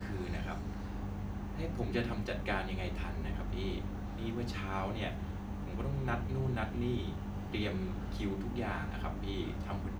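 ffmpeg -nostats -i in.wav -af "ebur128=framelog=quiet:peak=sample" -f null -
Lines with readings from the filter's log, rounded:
Integrated loudness:
  I:         -37.9 LUFS
  Threshold: -47.9 LUFS
Loudness range:
  LRA:         1.4 LU
  Threshold: -57.7 LUFS
  LRA low:   -38.3 LUFS
  LRA high:  -36.9 LUFS
Sample peak:
  Peak:      -19.4 dBFS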